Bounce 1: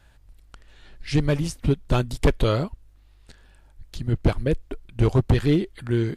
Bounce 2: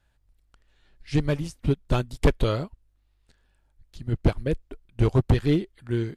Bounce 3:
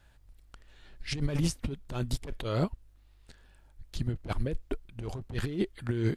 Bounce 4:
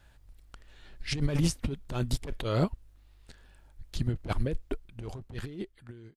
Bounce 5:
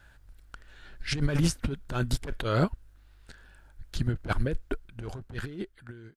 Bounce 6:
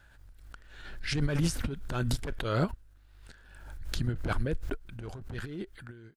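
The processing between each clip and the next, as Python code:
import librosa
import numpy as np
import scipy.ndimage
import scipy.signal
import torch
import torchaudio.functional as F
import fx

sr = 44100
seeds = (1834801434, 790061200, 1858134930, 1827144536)

y1 = fx.upward_expand(x, sr, threshold_db=-39.0, expansion=1.5)
y2 = fx.over_compress(y1, sr, threshold_db=-31.0, ratio=-1.0)
y3 = fx.fade_out_tail(y2, sr, length_s=1.8)
y3 = F.gain(torch.from_numpy(y3), 2.0).numpy()
y4 = fx.peak_eq(y3, sr, hz=1500.0, db=9.5, octaves=0.38)
y4 = F.gain(torch.from_numpy(y4), 1.5).numpy()
y5 = fx.pre_swell(y4, sr, db_per_s=48.0)
y5 = F.gain(torch.from_numpy(y5), -3.5).numpy()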